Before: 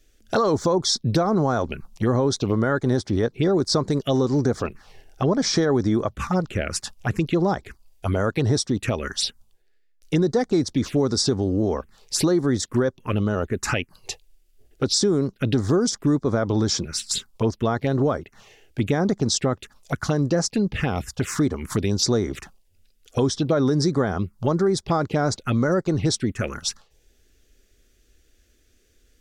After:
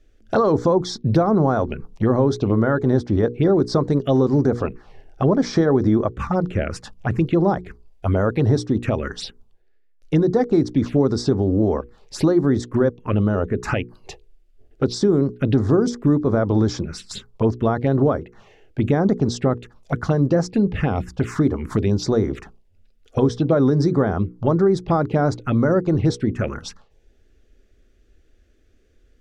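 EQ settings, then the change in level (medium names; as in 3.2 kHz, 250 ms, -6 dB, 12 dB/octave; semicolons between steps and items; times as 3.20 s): low-pass 1.1 kHz 6 dB/octave; hum notches 60/120/180/240/300/360/420/480 Hz; +4.5 dB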